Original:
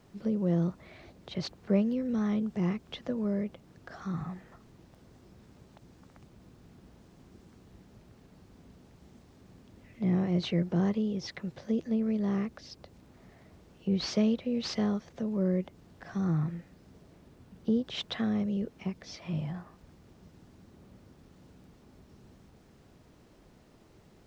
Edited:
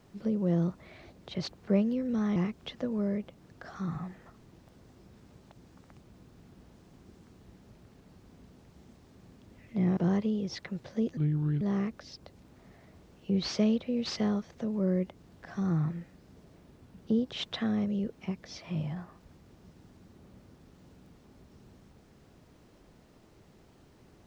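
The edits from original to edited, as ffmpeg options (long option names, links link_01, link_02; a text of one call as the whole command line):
ffmpeg -i in.wav -filter_complex "[0:a]asplit=5[link_01][link_02][link_03][link_04][link_05];[link_01]atrim=end=2.362[link_06];[link_02]atrim=start=2.618:end=10.232[link_07];[link_03]atrim=start=10.688:end=11.894[link_08];[link_04]atrim=start=11.89:end=12.19,asetpts=PTS-STARTPTS,asetrate=29988,aresample=44100[link_09];[link_05]atrim=start=12.186[link_10];[link_06][link_07]acrossfade=duration=0.004:curve1=hsin:curve2=hsin[link_11];[link_11][link_08]acrossfade=duration=0.004:curve1=hsin:curve2=hsin[link_12];[link_12][link_09]acrossfade=duration=0.004:curve1=hsin:curve2=hsin[link_13];[link_13][link_10]acrossfade=duration=0.004:curve1=hsin:curve2=hsin" out.wav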